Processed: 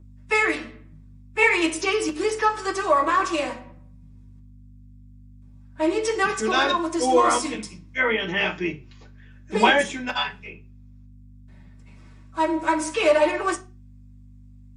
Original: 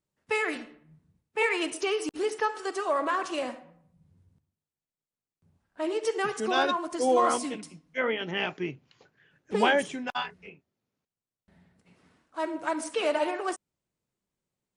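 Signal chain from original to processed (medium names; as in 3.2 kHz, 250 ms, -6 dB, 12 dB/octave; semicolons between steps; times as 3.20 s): hum 50 Hz, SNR 17 dB; reverberation, pre-delay 3 ms, DRR -5 dB; trim +2 dB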